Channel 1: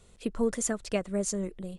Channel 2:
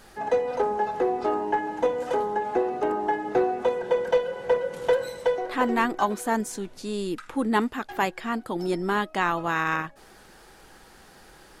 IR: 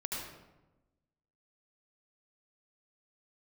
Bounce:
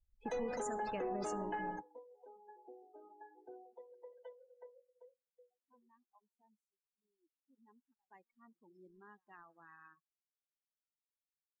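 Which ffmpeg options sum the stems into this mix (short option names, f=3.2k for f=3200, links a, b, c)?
-filter_complex "[0:a]highshelf=f=4k:g=-11,volume=-12.5dB,asplit=3[a][b][c];[b]volume=-12dB[d];[1:a]lowpass=7.6k,aemphasis=mode=production:type=50fm,volume=-2dB,afade=t=out:st=4.35:d=0.7:silence=0.266073,afade=t=in:st=7.53:d=0.75:silence=0.334965,asplit=2[e][f];[f]volume=-20dB[g];[c]apad=whole_len=511569[h];[e][h]sidechaingate=range=-33dB:threshold=-57dB:ratio=16:detection=peak[i];[2:a]atrim=start_sample=2205[j];[d][j]afir=irnorm=-1:irlink=0[k];[g]aecho=0:1:124:1[l];[a][i][k][l]amix=inputs=4:normalize=0,afftdn=nr=36:nf=-53,highshelf=f=2.8k:g=10.5,alimiter=level_in=7dB:limit=-24dB:level=0:latency=1:release=46,volume=-7dB"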